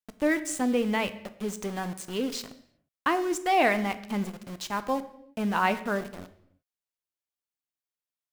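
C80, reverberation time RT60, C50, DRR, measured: 16.5 dB, not exponential, 14.5 dB, 11.0 dB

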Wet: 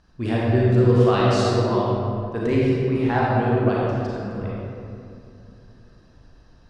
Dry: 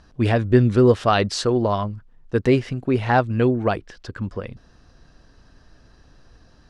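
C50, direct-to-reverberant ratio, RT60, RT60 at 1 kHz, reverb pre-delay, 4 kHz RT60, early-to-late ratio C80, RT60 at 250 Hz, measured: -4.0 dB, -6.0 dB, 2.7 s, 2.4 s, 32 ms, 1.4 s, -1.5 dB, 3.4 s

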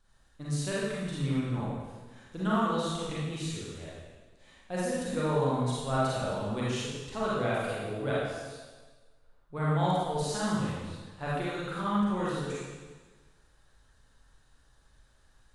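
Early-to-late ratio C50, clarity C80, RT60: -4.0 dB, -0.5 dB, 1.4 s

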